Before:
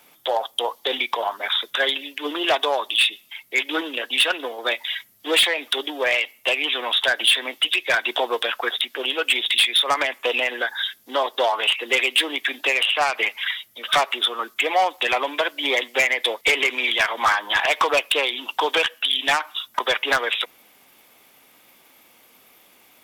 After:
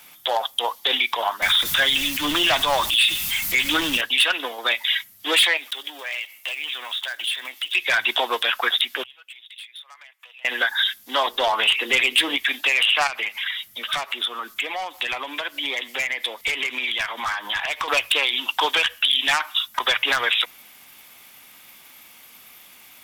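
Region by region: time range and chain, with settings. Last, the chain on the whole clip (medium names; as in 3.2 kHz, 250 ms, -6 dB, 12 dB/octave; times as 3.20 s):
1.42–4.01 s: jump at every zero crossing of -30 dBFS + tone controls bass +10 dB, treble +2 dB + band-stop 430 Hz, Q 6.6
5.57–7.75 s: block-companded coder 5-bit + compression 3:1, threshold -36 dBFS + bass shelf 330 Hz -10.5 dB
9.03–10.45 s: high-pass 810 Hz + inverted gate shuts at -27 dBFS, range -29 dB
11.27–12.37 s: bass shelf 360 Hz +11.5 dB + hum notches 60/120/180/240/300/360/420/480 Hz + compression 1.5:1, threshold -22 dBFS
13.07–17.88 s: bass shelf 500 Hz +5 dB + compression 2.5:1, threshold -33 dBFS
whole clip: peaking EQ 430 Hz -11.5 dB 2 oct; hum notches 60/120 Hz; peak limiter -17.5 dBFS; trim +7.5 dB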